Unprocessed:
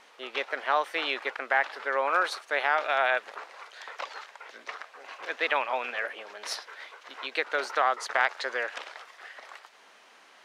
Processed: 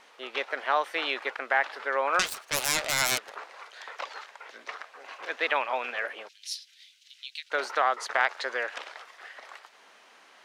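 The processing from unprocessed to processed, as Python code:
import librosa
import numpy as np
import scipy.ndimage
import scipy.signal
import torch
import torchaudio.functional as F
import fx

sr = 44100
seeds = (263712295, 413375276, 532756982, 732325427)

y = fx.self_delay(x, sr, depth_ms=0.93, at=(2.19, 3.3))
y = fx.cheby2_highpass(y, sr, hz=930.0, order=4, stop_db=60, at=(6.27, 7.5), fade=0.02)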